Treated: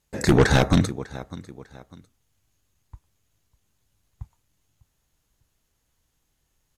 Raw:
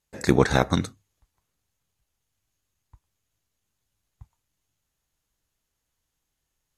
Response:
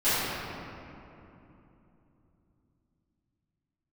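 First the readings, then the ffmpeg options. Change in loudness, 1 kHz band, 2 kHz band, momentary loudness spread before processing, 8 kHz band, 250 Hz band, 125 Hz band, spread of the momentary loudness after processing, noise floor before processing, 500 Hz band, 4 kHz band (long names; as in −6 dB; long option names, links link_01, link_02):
+2.0 dB, +0.5 dB, +3.5 dB, 9 LU, +4.0 dB, +3.0 dB, +5.0 dB, 21 LU, −81 dBFS, +1.5 dB, +3.5 dB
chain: -filter_complex "[0:a]aecho=1:1:599|1198:0.075|0.0247,asplit=2[link_01][link_02];[link_02]aeval=exprs='0.794*sin(PI/2*5.62*val(0)/0.794)':channel_layout=same,volume=-11dB[link_03];[link_01][link_03]amix=inputs=2:normalize=0,lowshelf=frequency=470:gain=4.5,volume=-5.5dB"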